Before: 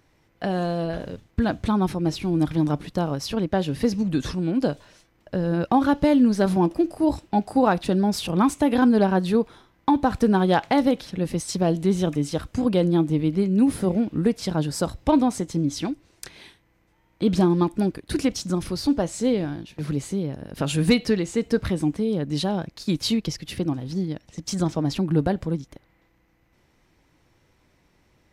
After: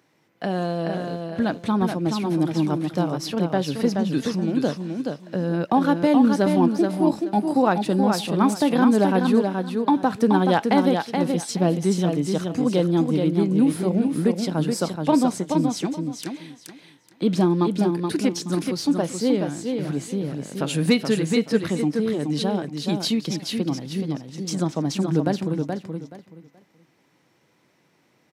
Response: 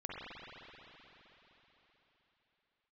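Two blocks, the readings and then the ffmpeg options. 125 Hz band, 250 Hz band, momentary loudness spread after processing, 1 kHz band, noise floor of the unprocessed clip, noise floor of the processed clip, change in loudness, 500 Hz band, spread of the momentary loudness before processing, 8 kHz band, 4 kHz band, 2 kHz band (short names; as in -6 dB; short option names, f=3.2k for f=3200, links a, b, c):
0.0 dB, +1.0 dB, 9 LU, +1.5 dB, -64 dBFS, -63 dBFS, +1.0 dB, +1.0 dB, 9 LU, +1.5 dB, +1.0 dB, +1.0 dB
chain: -af "highpass=f=140:w=0.5412,highpass=f=140:w=1.3066,aecho=1:1:426|852|1278:0.562|0.118|0.0248"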